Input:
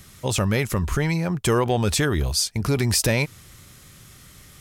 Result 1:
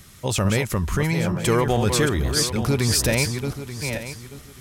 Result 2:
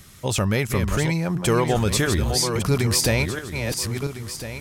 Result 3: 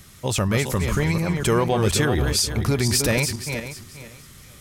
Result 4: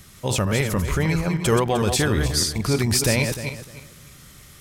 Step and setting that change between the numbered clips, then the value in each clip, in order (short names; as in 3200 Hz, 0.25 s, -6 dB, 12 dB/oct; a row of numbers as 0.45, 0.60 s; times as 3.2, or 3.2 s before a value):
regenerating reverse delay, time: 0.442, 0.678, 0.24, 0.152 s